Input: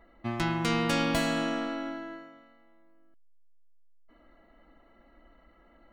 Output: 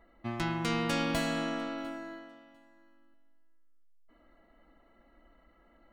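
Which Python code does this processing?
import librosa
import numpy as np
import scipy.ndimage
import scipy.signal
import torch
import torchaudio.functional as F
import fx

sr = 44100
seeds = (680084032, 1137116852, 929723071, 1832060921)

p1 = fx.high_shelf(x, sr, hz=8600.0, db=10.0, at=(1.78, 2.19))
p2 = p1 + fx.echo_feedback(p1, sr, ms=699, feedback_pct=15, wet_db=-23, dry=0)
y = p2 * librosa.db_to_amplitude(-3.5)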